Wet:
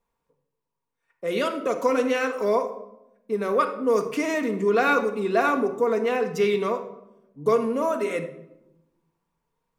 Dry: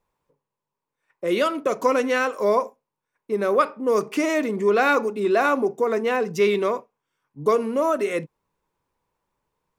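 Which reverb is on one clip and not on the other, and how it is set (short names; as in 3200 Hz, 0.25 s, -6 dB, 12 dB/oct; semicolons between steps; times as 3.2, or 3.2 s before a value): shoebox room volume 2800 m³, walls furnished, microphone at 1.7 m; gain -3.5 dB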